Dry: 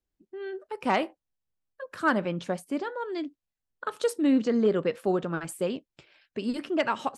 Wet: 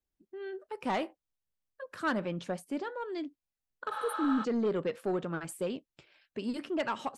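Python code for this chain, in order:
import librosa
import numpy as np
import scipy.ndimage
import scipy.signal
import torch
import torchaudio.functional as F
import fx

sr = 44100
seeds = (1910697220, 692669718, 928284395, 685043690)

y = 10.0 ** (-19.5 / 20.0) * np.tanh(x / 10.0 ** (-19.5 / 20.0))
y = fx.spec_repair(y, sr, seeds[0], start_s=3.94, length_s=0.48, low_hz=480.0, high_hz=8600.0, source='before')
y = y * 10.0 ** (-4.0 / 20.0)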